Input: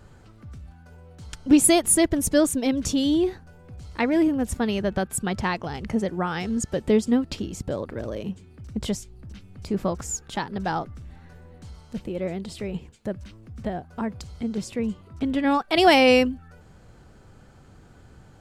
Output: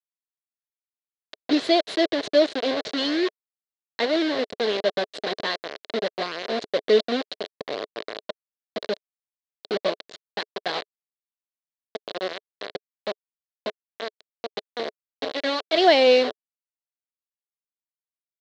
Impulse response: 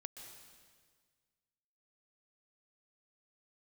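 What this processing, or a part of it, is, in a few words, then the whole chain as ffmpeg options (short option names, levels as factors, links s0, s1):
hand-held game console: -filter_complex "[0:a]asplit=3[s0][s1][s2];[s0]afade=t=out:st=13.68:d=0.02[s3];[s1]equalizer=f=400:w=0.5:g=-3,afade=t=in:st=13.68:d=0.02,afade=t=out:st=15.6:d=0.02[s4];[s2]afade=t=in:st=15.6:d=0.02[s5];[s3][s4][s5]amix=inputs=3:normalize=0,acrusher=bits=3:mix=0:aa=0.000001,highpass=410,equalizer=f=430:t=q:w=4:g=6,equalizer=f=620:t=q:w=4:g=6,equalizer=f=880:t=q:w=4:g=-9,equalizer=f=1300:t=q:w=4:g=-7,equalizer=f=2500:t=q:w=4:g=-6,equalizer=f=4100:t=q:w=4:g=8,lowpass=f=4200:w=0.5412,lowpass=f=4200:w=1.3066"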